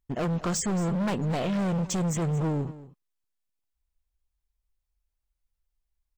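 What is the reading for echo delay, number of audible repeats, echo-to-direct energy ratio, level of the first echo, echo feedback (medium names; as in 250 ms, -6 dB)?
225 ms, 1, -16.5 dB, -16.5 dB, no regular repeats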